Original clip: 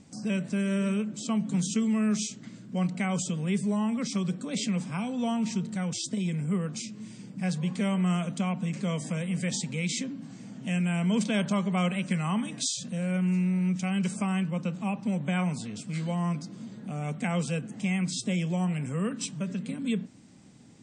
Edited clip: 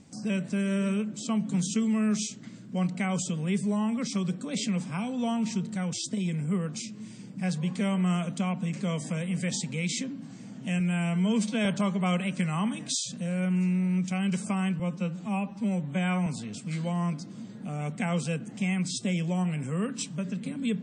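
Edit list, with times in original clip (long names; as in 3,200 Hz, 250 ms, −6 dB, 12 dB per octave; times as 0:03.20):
0:10.80–0:11.37: time-stretch 1.5×
0:14.51–0:15.49: time-stretch 1.5×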